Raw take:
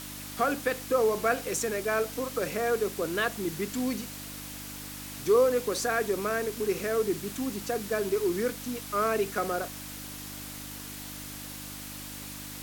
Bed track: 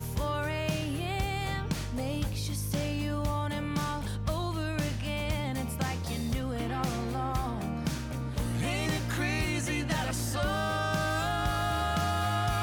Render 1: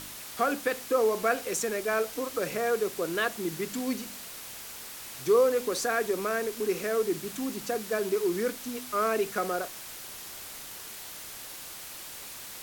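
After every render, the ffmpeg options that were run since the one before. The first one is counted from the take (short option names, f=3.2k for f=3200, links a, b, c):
-af "bandreject=f=50:t=h:w=4,bandreject=f=100:t=h:w=4,bandreject=f=150:t=h:w=4,bandreject=f=200:t=h:w=4,bandreject=f=250:t=h:w=4,bandreject=f=300:t=h:w=4"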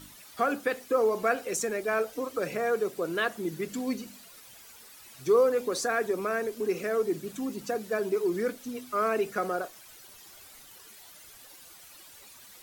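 -af "afftdn=nr=12:nf=-43"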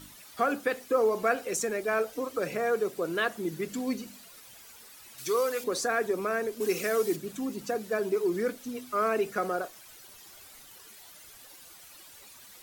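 -filter_complex "[0:a]asettb=1/sr,asplit=3[a][b][c];[a]atrim=end=5.184[d];[b]atrim=start=5.18:end=5.64,asetpts=PTS-STARTPTS,afade=t=in:d=0.004:c=qsin,afade=t=out:st=0.456:d=0.004:c=qsin,tiltshelf=f=1.2k:g=-8.5[e];[c]atrim=start=5.636[f];[d][e]acrossfade=d=0.004:c1=hsin:c2=qsin[g];[g][f]acrossfade=d=0.004:c1=qsin:c2=hsin,asplit=3[h][i][j];[h]afade=t=out:st=6.6:d=0.02[k];[i]highshelf=f=2.4k:g=10.5,afade=t=in:st=6.6:d=0.02,afade=t=out:st=7.15:d=0.02[l];[j]afade=t=in:st=7.15:d=0.02[m];[k][l][m]amix=inputs=3:normalize=0"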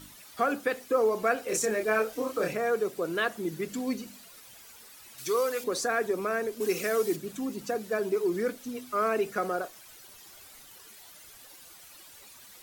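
-filter_complex "[0:a]asettb=1/sr,asplit=3[a][b][c];[a]atrim=end=1.454[d];[b]atrim=start=1.45:end=2.53,asetpts=PTS-STARTPTS,afade=t=in:d=0.004:c=qsin,afade=t=out:st=1.076:d=0.004:c=qsin,asplit=2[e][f];[f]adelay=28,volume=-2dB[g];[e][g]amix=inputs=2:normalize=0,atrim=end_sample=47628[h];[c]atrim=start=2.526[i];[d][h]acrossfade=d=0.004:c1=hsin:c2=qsin[j];[j][i]acrossfade=d=0.004:c1=qsin:c2=hsin"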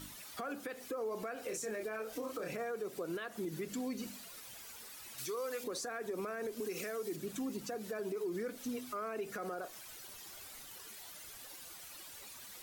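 -af "acompressor=threshold=-29dB:ratio=6,alimiter=level_in=7.5dB:limit=-24dB:level=0:latency=1:release=137,volume=-7.5dB"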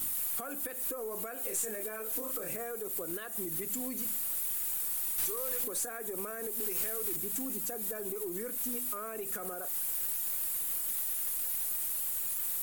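-af "aexciter=amount=7.7:drive=7.4:freq=7.5k,aeval=exprs='(tanh(25.1*val(0)+0.15)-tanh(0.15))/25.1':c=same"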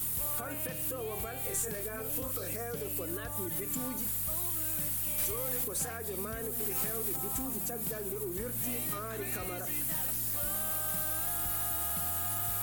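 -filter_complex "[1:a]volume=-13dB[a];[0:a][a]amix=inputs=2:normalize=0"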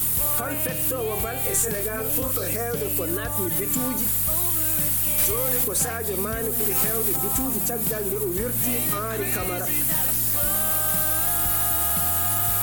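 -af "volume=11dB"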